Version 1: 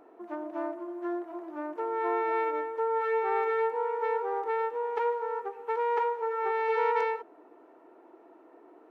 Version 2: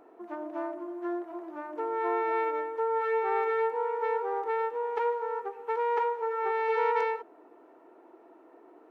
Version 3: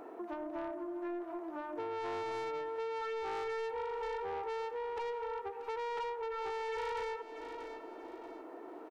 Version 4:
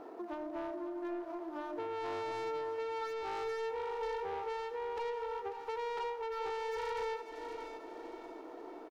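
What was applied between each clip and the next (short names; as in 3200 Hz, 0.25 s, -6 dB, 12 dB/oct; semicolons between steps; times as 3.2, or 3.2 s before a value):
de-hum 299.9 Hz, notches 2
soft clip -30 dBFS, distortion -10 dB; feedback echo 0.633 s, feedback 30%, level -17.5 dB; compressor 2.5:1, threshold -50 dBFS, peak gain reduction 12 dB; gain +7 dB
median filter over 15 samples; on a send: feedback echo 0.542 s, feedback 51%, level -12.5 dB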